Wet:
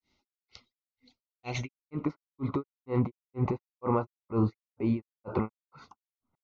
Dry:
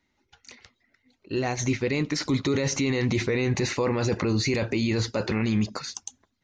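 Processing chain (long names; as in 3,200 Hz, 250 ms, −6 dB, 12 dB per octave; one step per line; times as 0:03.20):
granular cloud 262 ms, grains 2.1 per second, pitch spread up and down by 0 semitones
low-pass filter sweep 5,000 Hz → 1,100 Hz, 0:01.27–0:02.06
Butterworth band-reject 1,700 Hz, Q 3.1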